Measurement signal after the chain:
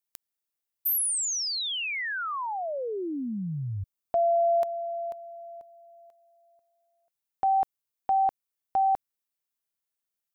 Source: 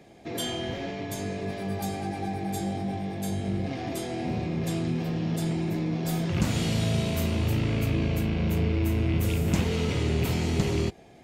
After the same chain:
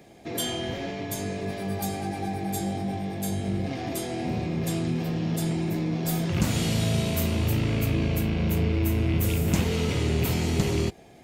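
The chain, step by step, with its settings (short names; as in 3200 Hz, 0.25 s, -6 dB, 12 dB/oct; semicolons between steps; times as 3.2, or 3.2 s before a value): high shelf 10000 Hz +9.5 dB; gain +1 dB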